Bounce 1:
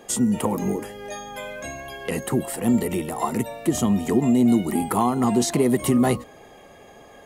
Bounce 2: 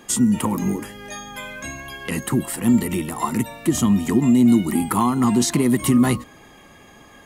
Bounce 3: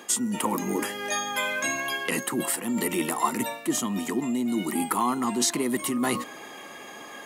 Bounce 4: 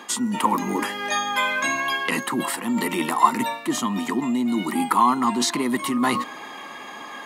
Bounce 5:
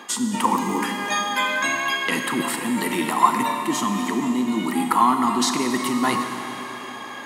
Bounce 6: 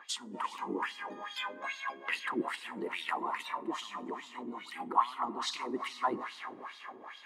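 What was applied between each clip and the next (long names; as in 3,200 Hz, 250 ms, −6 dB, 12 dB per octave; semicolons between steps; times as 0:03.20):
flat-topped bell 560 Hz −9 dB 1.2 octaves; level +3.5 dB
reversed playback; downward compressor 5 to 1, threshold −26 dBFS, peak gain reduction 13.5 dB; reversed playback; high-pass filter 330 Hz 12 dB per octave; level +6.5 dB
octave-band graphic EQ 125/250/1,000/2,000/4,000 Hz +4/+7/+12/+5/+8 dB; level −4 dB
four-comb reverb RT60 3.5 s, combs from 28 ms, DRR 5 dB
LFO wah 2.4 Hz 350–4,000 Hz, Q 2.3; harmonic and percussive parts rebalanced harmonic −10 dB; level −3 dB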